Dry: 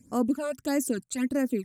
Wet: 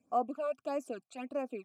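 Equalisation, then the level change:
formant filter a
+7.0 dB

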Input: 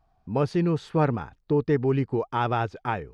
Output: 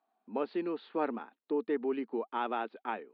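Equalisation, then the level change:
Chebyshev band-pass filter 220–4,200 Hz, order 5
−7.5 dB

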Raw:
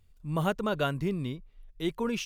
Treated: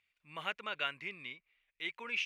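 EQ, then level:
resonant band-pass 2,300 Hz, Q 4.3
+8.5 dB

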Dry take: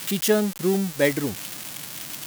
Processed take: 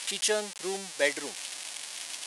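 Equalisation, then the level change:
high-pass filter 680 Hz 12 dB per octave
elliptic low-pass filter 10,000 Hz, stop band 60 dB
parametric band 1,300 Hz −5.5 dB 0.67 octaves
0.0 dB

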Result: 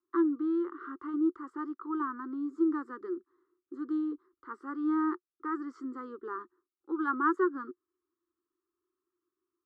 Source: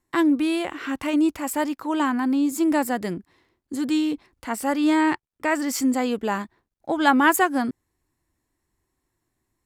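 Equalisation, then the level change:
pair of resonant band-passes 670 Hz, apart 1.8 octaves
high-frequency loss of the air 110 metres
phaser with its sweep stopped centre 670 Hz, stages 6
0.0 dB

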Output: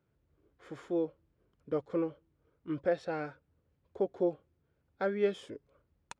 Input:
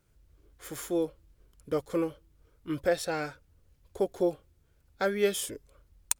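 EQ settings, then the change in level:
high-pass filter 120 Hz 12 dB per octave
head-to-tape spacing loss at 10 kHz 31 dB
−1.5 dB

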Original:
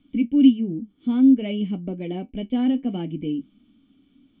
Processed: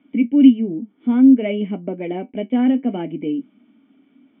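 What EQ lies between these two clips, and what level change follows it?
dynamic equaliser 840 Hz, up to −4 dB, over −40 dBFS, Q 1.9
loudspeaker in its box 220–2,800 Hz, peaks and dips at 240 Hz +4 dB, 420 Hz +5 dB, 640 Hz +9 dB, 900 Hz +8 dB, 1,500 Hz +5 dB, 2,100 Hz +7 dB
+3.0 dB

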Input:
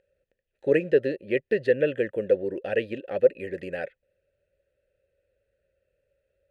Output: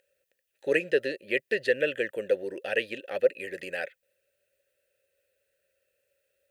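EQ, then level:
spectral tilt +4 dB per octave
0.0 dB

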